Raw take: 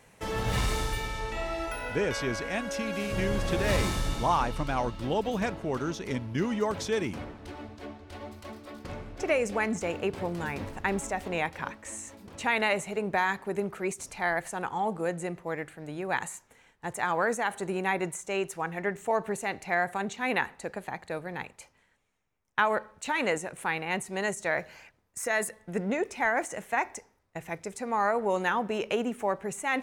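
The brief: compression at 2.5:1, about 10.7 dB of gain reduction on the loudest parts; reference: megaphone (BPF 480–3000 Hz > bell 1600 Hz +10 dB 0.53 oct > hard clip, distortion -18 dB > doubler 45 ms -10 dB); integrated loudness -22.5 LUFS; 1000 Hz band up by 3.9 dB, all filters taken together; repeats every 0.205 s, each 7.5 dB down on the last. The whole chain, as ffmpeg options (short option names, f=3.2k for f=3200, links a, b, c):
-filter_complex "[0:a]equalizer=f=1k:t=o:g=3.5,acompressor=threshold=-35dB:ratio=2.5,highpass=480,lowpass=3k,equalizer=f=1.6k:t=o:w=0.53:g=10,aecho=1:1:205|410|615|820|1025:0.422|0.177|0.0744|0.0312|0.0131,asoftclip=type=hard:threshold=-24dB,asplit=2[a][b];[b]adelay=45,volume=-10dB[c];[a][c]amix=inputs=2:normalize=0,volume=12.5dB"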